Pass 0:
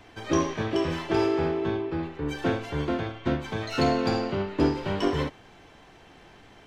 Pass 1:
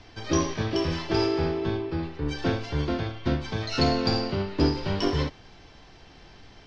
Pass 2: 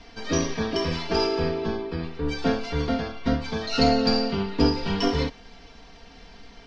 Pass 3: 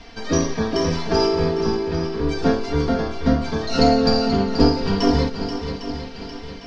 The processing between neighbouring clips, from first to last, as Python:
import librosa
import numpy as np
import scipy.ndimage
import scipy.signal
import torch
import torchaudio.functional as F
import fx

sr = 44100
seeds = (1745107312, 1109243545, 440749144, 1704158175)

y1 = fx.lowpass_res(x, sr, hz=5100.0, q=3.8)
y1 = fx.low_shelf(y1, sr, hz=110.0, db=11.5)
y1 = y1 * 10.0 ** (-2.0 / 20.0)
y2 = y1 + 0.94 * np.pad(y1, (int(4.3 * sr / 1000.0), 0))[:len(y1)]
y3 = fx.echo_swing(y2, sr, ms=804, ratio=1.5, feedback_pct=38, wet_db=-9.5)
y3 = fx.dynamic_eq(y3, sr, hz=2800.0, q=1.1, threshold_db=-45.0, ratio=4.0, max_db=-7)
y3 = y3 * 10.0 ** (5.0 / 20.0)